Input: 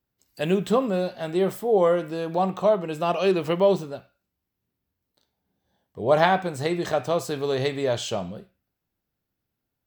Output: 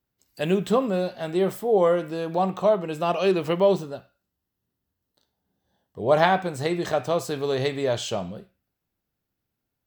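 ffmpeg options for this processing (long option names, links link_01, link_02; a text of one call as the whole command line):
ffmpeg -i in.wav -filter_complex "[0:a]asettb=1/sr,asplit=3[link_01][link_02][link_03];[link_01]atrim=end=3.814[link_04];[link_02]atrim=start=3.81:end=6.01,asetpts=PTS-STARTPTS,afade=type=in:duration=0.004:curve=qsin,afade=type=out:start_time=2.196:duration=0.004:curve=qsin,bandreject=frequency=2300:width=6.1[link_05];[link_03]atrim=start=6.006[link_06];[link_04][link_05]acrossfade=duration=0.004:curve1=hsin:curve2=qsin[link_07];[link_07][link_06]acrossfade=duration=0.004:curve1=qsin:curve2=hsin" out.wav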